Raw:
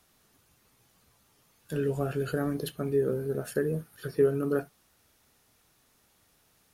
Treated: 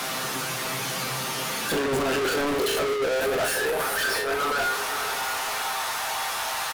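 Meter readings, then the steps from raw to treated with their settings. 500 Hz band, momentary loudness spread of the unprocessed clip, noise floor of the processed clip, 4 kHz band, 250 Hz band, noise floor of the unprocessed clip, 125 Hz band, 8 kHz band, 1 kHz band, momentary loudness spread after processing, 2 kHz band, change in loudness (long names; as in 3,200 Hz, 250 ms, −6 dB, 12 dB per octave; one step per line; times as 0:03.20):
+3.5 dB, 9 LU, −30 dBFS, +23.0 dB, +0.5 dB, −67 dBFS, −4.5 dB, +21.0 dB, +19.0 dB, 4 LU, +19.0 dB, +4.5 dB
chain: high-pass filter 100 Hz
mains-hum notches 50/100/150/200/250/300/350/400/450 Hz
compressor whose output falls as the input rises −36 dBFS, ratio −1
high-pass filter sweep 140 Hz → 840 Hz, 0:01.19–0:03.65
tuned comb filter 130 Hz, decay 0.24 s, harmonics all, mix 80%
mid-hump overdrive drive 41 dB, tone 3,600 Hz, clips at −22 dBFS
feedback delay with all-pass diffusion 521 ms, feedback 43%, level −12.5 dB
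leveller curve on the samples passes 3
double-tracking delay 37 ms −11.5 dB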